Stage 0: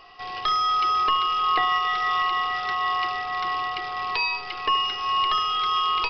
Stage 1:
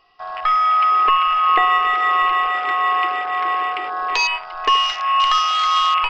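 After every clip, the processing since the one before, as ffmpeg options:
-af "afwtdn=0.0355,volume=7dB"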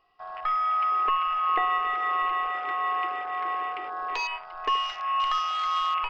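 -af "equalizer=f=5.7k:w=0.46:g=-7.5,volume=-8dB"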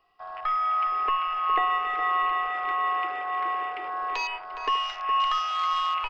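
-filter_complex "[0:a]acrossover=split=190|1400[a][b][c];[a]acrusher=samples=36:mix=1:aa=0.000001[d];[d][b][c]amix=inputs=3:normalize=0,asplit=2[e][f];[f]adelay=414,volume=-9dB,highshelf=f=4k:g=-9.32[g];[e][g]amix=inputs=2:normalize=0"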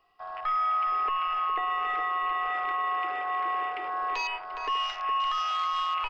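-af "alimiter=limit=-21.5dB:level=0:latency=1:release=23"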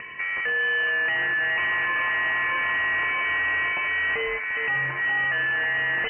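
-af "acompressor=mode=upward:threshold=-32dB:ratio=2.5,aeval=exprs='0.0891*(cos(1*acos(clip(val(0)/0.0891,-1,1)))-cos(1*PI/2))+0.02*(cos(4*acos(clip(val(0)/0.0891,-1,1)))-cos(4*PI/2))+0.0224*(cos(5*acos(clip(val(0)/0.0891,-1,1)))-cos(5*PI/2))+0.0178*(cos(6*acos(clip(val(0)/0.0891,-1,1)))-cos(6*PI/2))':c=same,lowpass=f=2.6k:t=q:w=0.5098,lowpass=f=2.6k:t=q:w=0.6013,lowpass=f=2.6k:t=q:w=0.9,lowpass=f=2.6k:t=q:w=2.563,afreqshift=-3000,volume=3dB"

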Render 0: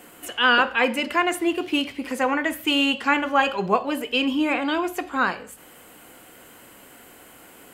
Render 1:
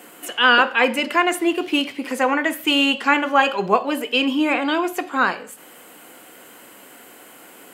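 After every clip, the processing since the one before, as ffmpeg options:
-af "highpass=200,volume=3.5dB"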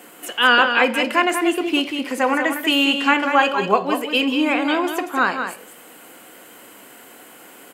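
-af "aecho=1:1:189:0.422"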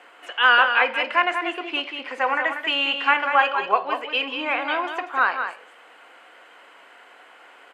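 -af "highpass=720,lowpass=2.7k"

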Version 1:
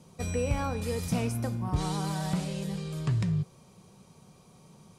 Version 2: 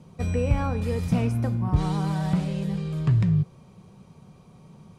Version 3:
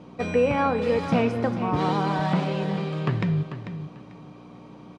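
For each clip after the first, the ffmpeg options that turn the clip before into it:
-af "bass=f=250:g=5,treble=f=4k:g=-10,volume=2.5dB"
-af "aeval=exprs='val(0)+0.00794*(sin(2*PI*60*n/s)+sin(2*PI*2*60*n/s)/2+sin(2*PI*3*60*n/s)/3+sin(2*PI*4*60*n/s)/4+sin(2*PI*5*60*n/s)/5)':c=same,highpass=300,lowpass=3.6k,aecho=1:1:443|886|1329:0.299|0.0657|0.0144,volume=8.5dB"

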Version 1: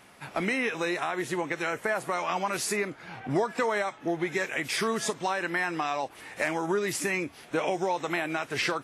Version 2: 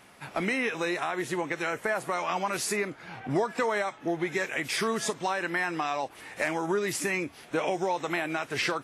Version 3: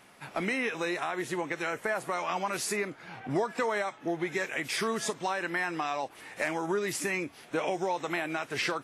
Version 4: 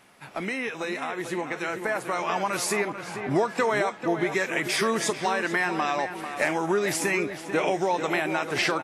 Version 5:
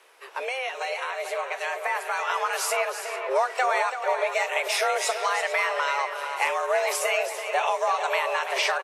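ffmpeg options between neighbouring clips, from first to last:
-af "acontrast=75,volume=-7dB"
-af "equalizer=f=65:w=1.3:g=-6,volume=-2dB"
-filter_complex "[0:a]asplit=2[a][b];[b]adelay=443,lowpass=f=2.9k:p=1,volume=-9dB,asplit=2[c][d];[d]adelay=443,lowpass=f=2.9k:p=1,volume=0.49,asplit=2[e][f];[f]adelay=443,lowpass=f=2.9k:p=1,volume=0.49,asplit=2[g][h];[h]adelay=443,lowpass=f=2.9k:p=1,volume=0.49,asplit=2[i][j];[j]adelay=443,lowpass=f=2.9k:p=1,volume=0.49,asplit=2[k][l];[l]adelay=443,lowpass=f=2.9k:p=1,volume=0.49[m];[a][c][e][g][i][k][m]amix=inputs=7:normalize=0,dynaudnorm=f=810:g=5:m=5.5dB"
-af "afreqshift=260,aecho=1:1:332:0.335"

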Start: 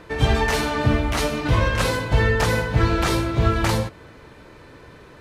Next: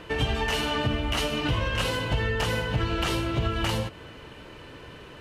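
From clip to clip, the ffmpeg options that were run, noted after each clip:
-af "equalizer=f=2.9k:t=o:w=0.21:g=14,acompressor=threshold=-24dB:ratio=4"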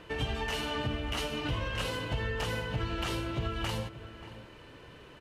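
-filter_complex "[0:a]asplit=2[a][b];[b]adelay=583.1,volume=-14dB,highshelf=f=4k:g=-13.1[c];[a][c]amix=inputs=2:normalize=0,volume=-7dB"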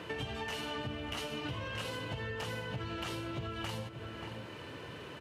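-af "highpass=f=80:w=0.5412,highpass=f=80:w=1.3066,acompressor=threshold=-46dB:ratio=3,volume=6dB"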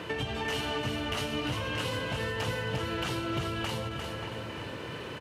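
-af "aecho=1:1:268|350|681:0.15|0.531|0.15,volume=5.5dB"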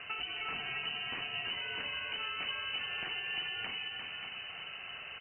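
-af "lowpass=f=2.6k:t=q:w=0.5098,lowpass=f=2.6k:t=q:w=0.6013,lowpass=f=2.6k:t=q:w=0.9,lowpass=f=2.6k:t=q:w=2.563,afreqshift=-3100,volume=-5.5dB"

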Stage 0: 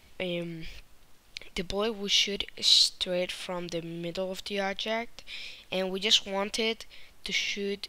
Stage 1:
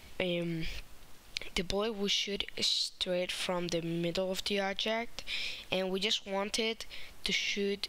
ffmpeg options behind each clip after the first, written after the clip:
-af "acompressor=threshold=-33dB:ratio=12,volume=4.5dB"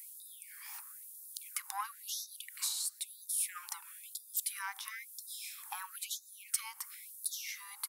-af "firequalizer=gain_entry='entry(1100,0);entry(2900,-23);entry(10000,11)':delay=0.05:min_phase=1,asoftclip=type=tanh:threshold=-25dB,afftfilt=real='re*gte(b*sr/1024,760*pow(3600/760,0.5+0.5*sin(2*PI*1*pts/sr)))':imag='im*gte(b*sr/1024,760*pow(3600/760,0.5+0.5*sin(2*PI*1*pts/sr)))':win_size=1024:overlap=0.75,volume=6.5dB"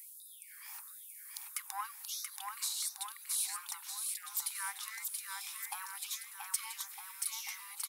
-af "aecho=1:1:680|1258|1749|2167|2522:0.631|0.398|0.251|0.158|0.1,volume=-1.5dB"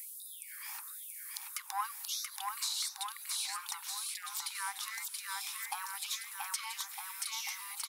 -filter_complex "[0:a]acrossover=split=1200|3100|6000[a][b][c][d];[b]alimiter=level_in=19.5dB:limit=-24dB:level=0:latency=1:release=402,volume=-19.5dB[e];[d]acompressor=threshold=-48dB:ratio=6[f];[a][e][c][f]amix=inputs=4:normalize=0,volume=6dB"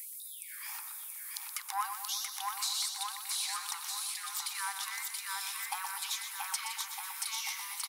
-af "aecho=1:1:123|246|369|492|615|738|861:0.355|0.209|0.124|0.0729|0.043|0.0254|0.015,volume=1.5dB"

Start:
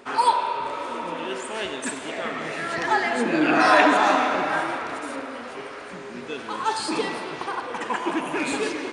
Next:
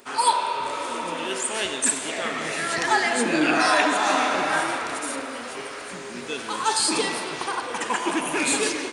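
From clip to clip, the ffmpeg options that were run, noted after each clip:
-af "aemphasis=mode=production:type=75fm,dynaudnorm=f=150:g=3:m=5dB,volume=-4dB"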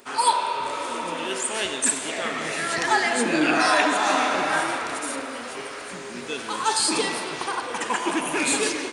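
-af anull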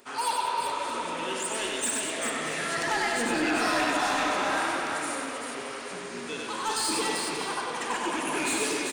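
-filter_complex "[0:a]asoftclip=type=tanh:threshold=-18.5dB,asplit=2[a][b];[b]aecho=0:1:95|196|391|629:0.668|0.316|0.562|0.15[c];[a][c]amix=inputs=2:normalize=0,volume=-5dB"

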